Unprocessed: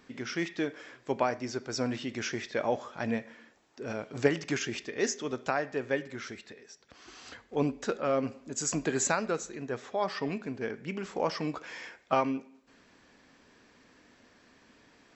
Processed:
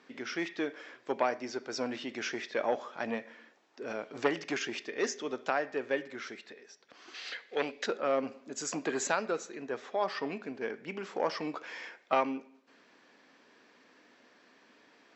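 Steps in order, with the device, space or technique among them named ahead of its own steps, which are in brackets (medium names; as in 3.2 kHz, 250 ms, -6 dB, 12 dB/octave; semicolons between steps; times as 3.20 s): public-address speaker with an overloaded transformer (transformer saturation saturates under 1 kHz; band-pass 280–5400 Hz); 7.14–7.86 s: graphic EQ 125/250/500/1000/2000/4000 Hz -6/-8/+4/-6/+10/+9 dB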